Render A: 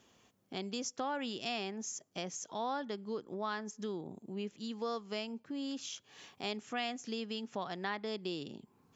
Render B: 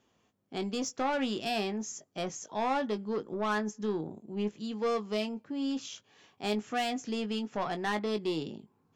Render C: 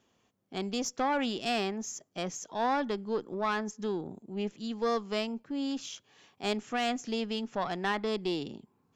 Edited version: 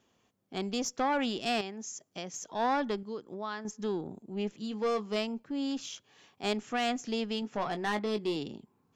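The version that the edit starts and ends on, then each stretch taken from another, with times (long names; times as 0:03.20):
C
0:01.61–0:02.34: punch in from A
0:03.03–0:03.65: punch in from A
0:04.59–0:05.16: punch in from B
0:07.42–0:08.36: punch in from B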